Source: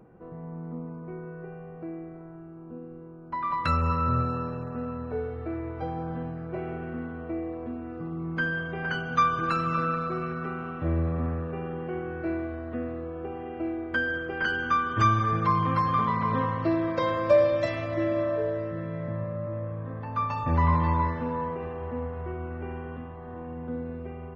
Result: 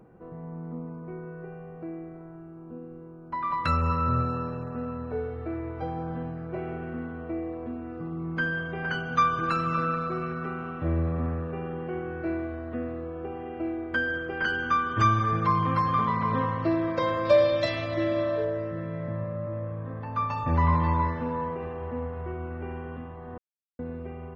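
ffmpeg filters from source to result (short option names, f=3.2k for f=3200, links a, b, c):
-filter_complex "[0:a]asettb=1/sr,asplit=3[a][b][c];[a]atrim=end=17.254[d];[b]atrim=start=17.25:end=18.45,asetpts=PTS-STARTPTS,afade=t=in:d=0.004:c=qsin,afade=t=out:st=1.196:d=0.004:c=qsin,equalizer=f=3.9k:w=1.6:g=10.5[e];[c]atrim=start=18.446[f];[d][e]acrossfade=d=0.004:c1=hsin:c2=qsin[g];[g][f]acrossfade=d=0.004:c1=qsin:c2=hsin,asplit=3[h][i][j];[h]atrim=end=23.38,asetpts=PTS-STARTPTS,afade=t=out:st=23.376:d=0.004:c=hsin[k];[i]atrim=start=23.38:end=23.79,asetpts=PTS-STARTPTS,volume=0[l];[j]atrim=start=23.79,asetpts=PTS-STARTPTS,afade=t=in:d=0.004:c=hsin[m];[k][l][m]concat=n=3:v=0:a=1"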